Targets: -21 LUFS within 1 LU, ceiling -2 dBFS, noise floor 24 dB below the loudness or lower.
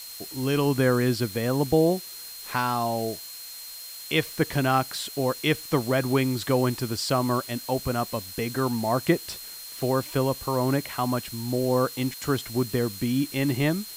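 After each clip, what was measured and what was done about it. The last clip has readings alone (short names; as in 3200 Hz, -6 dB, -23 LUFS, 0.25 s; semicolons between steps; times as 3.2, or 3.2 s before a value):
steady tone 4200 Hz; tone level -42 dBFS; noise floor -40 dBFS; noise floor target -50 dBFS; loudness -26.0 LUFS; peak -8.5 dBFS; loudness target -21.0 LUFS
-> notch 4200 Hz, Q 30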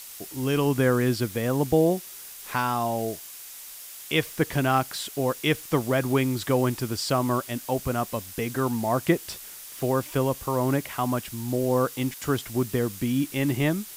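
steady tone none; noise floor -42 dBFS; noise floor target -50 dBFS
-> noise print and reduce 8 dB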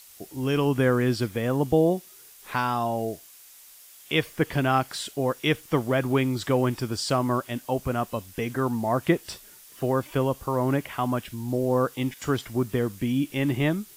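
noise floor -50 dBFS; loudness -26.0 LUFS; peak -8.5 dBFS; loudness target -21.0 LUFS
-> gain +5 dB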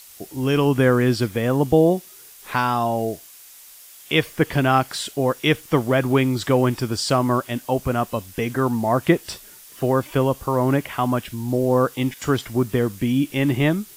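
loudness -21.0 LUFS; peak -3.5 dBFS; noise floor -45 dBFS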